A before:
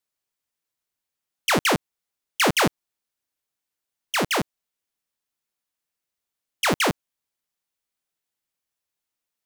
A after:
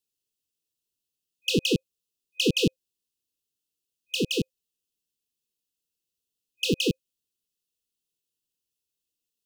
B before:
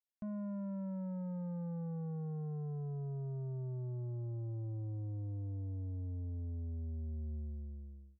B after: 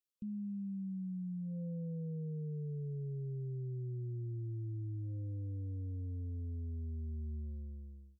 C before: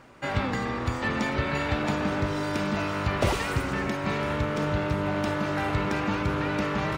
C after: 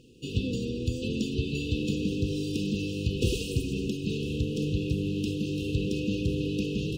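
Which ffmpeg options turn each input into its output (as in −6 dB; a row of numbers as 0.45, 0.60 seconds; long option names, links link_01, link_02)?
-filter_complex "[0:a]acrossover=split=5600[link_01][link_02];[link_02]acompressor=threshold=-37dB:ratio=4:attack=1:release=60[link_03];[link_01][link_03]amix=inputs=2:normalize=0,afftfilt=real='re*(1-between(b*sr/4096,520,2500))':imag='im*(1-between(b*sr/4096,520,2500))':win_size=4096:overlap=0.75"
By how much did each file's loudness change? −4.0, 0.0, −2.5 LU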